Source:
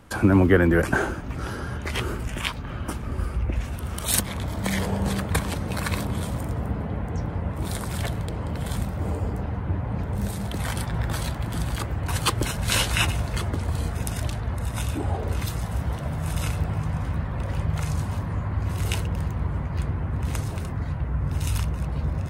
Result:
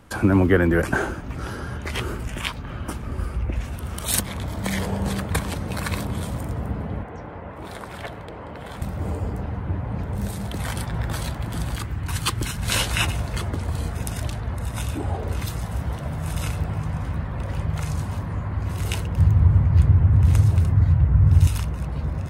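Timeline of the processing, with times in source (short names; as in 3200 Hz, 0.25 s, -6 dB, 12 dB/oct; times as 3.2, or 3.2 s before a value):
7.03–8.82 tone controls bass -12 dB, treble -13 dB
11.78–12.63 bell 580 Hz -9 dB 1.2 oct
19.18–21.47 bell 95 Hz +14.5 dB 1.4 oct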